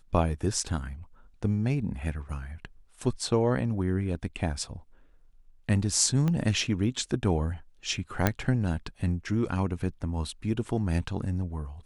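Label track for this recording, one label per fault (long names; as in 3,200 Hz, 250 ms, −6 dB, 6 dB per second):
6.280000	6.280000	click −17 dBFS
8.270000	8.270000	click −8 dBFS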